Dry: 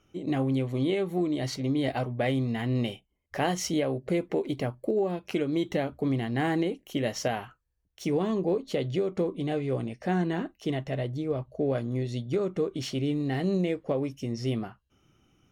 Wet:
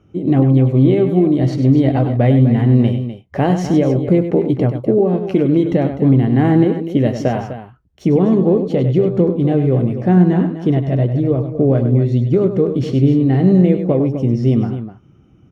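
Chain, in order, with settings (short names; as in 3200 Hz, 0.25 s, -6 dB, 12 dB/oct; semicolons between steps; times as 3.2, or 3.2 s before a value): HPF 98 Hz; tilt -4 dB/oct; on a send: tapped delay 99/251 ms -9/-11.5 dB; on the sum: gain +7 dB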